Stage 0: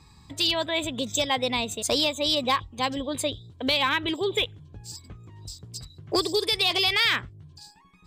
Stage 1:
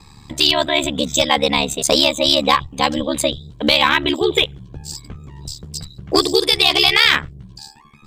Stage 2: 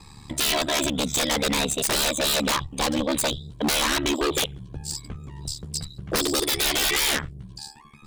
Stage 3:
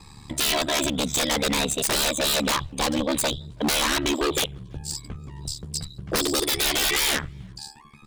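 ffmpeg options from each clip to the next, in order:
-af "aeval=exprs='val(0)*sin(2*PI*36*n/s)':c=same,acontrast=46,volume=2.11"
-af "equalizer=f=9400:w=3.9:g=8.5,aeval=exprs='0.178*(abs(mod(val(0)/0.178+3,4)-2)-1)':c=same,volume=0.794"
-filter_complex "[0:a]asplit=2[s0][s1];[s1]adelay=330,highpass=300,lowpass=3400,asoftclip=type=hard:threshold=0.0531,volume=0.0355[s2];[s0][s2]amix=inputs=2:normalize=0"

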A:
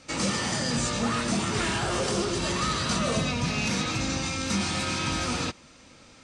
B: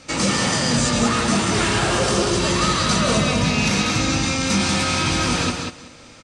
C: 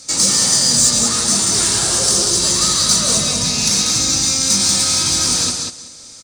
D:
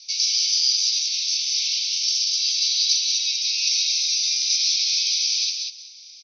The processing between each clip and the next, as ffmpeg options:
-af "aecho=1:1:189|378|567:0.562|0.09|0.0144,volume=2.24"
-af "aexciter=amount=5.3:drive=8.4:freq=4000,volume=0.562"
-af "asuperpass=centerf=3700:order=20:qfactor=1,volume=0.75"

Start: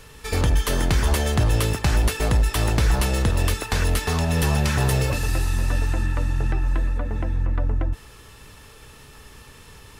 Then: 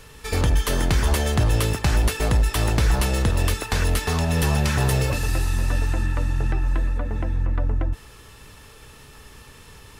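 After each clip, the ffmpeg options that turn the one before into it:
-af anull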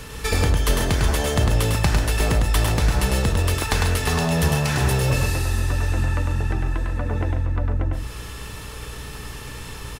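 -filter_complex "[0:a]acompressor=threshold=0.0447:ratio=4,aeval=exprs='val(0)+0.00398*(sin(2*PI*60*n/s)+sin(2*PI*2*60*n/s)/2+sin(2*PI*3*60*n/s)/3+sin(2*PI*4*60*n/s)/4+sin(2*PI*5*60*n/s)/5)':c=same,asplit=2[s0][s1];[s1]aecho=0:1:102|139.9:0.631|0.282[s2];[s0][s2]amix=inputs=2:normalize=0,volume=2.51"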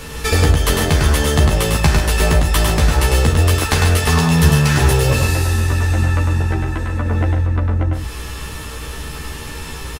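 -filter_complex "[0:a]asplit=2[s0][s1];[s1]adelay=13,volume=0.794[s2];[s0][s2]amix=inputs=2:normalize=0,volume=1.58"

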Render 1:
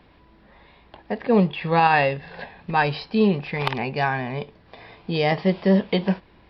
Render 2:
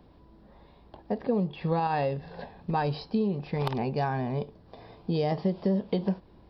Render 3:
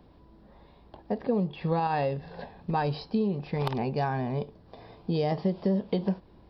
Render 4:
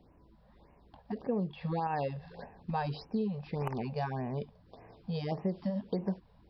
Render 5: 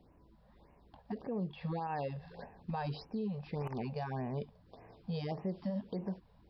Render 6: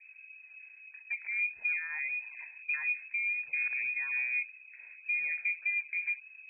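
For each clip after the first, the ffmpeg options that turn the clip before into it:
-af "equalizer=f=2200:t=o:w=1.7:g=-15,acompressor=threshold=0.0708:ratio=10"
-af anull
-af "afftfilt=real='re*(1-between(b*sr/1024,280*pow(4200/280,0.5+0.5*sin(2*PI*1.7*pts/sr))/1.41,280*pow(4200/280,0.5+0.5*sin(2*PI*1.7*pts/sr))*1.41))':imag='im*(1-between(b*sr/1024,280*pow(4200/280,0.5+0.5*sin(2*PI*1.7*pts/sr))/1.41,280*pow(4200/280,0.5+0.5*sin(2*PI*1.7*pts/sr))*1.41))':win_size=1024:overlap=0.75,volume=0.531"
-af "alimiter=level_in=1.5:limit=0.0631:level=0:latency=1:release=54,volume=0.668,volume=0.794"
-af "aemphasis=mode=reproduction:type=riaa,lowpass=f=2200:t=q:w=0.5098,lowpass=f=2200:t=q:w=0.6013,lowpass=f=2200:t=q:w=0.9,lowpass=f=2200:t=q:w=2.563,afreqshift=-2600,volume=0.668"

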